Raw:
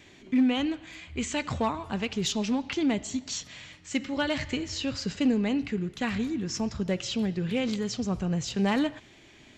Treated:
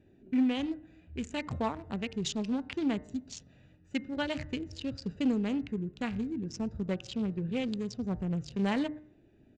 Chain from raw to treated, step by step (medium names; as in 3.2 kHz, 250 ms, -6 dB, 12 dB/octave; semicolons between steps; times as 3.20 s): local Wiener filter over 41 samples; resampled via 22.05 kHz; de-hum 151.3 Hz, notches 14; trim -3.5 dB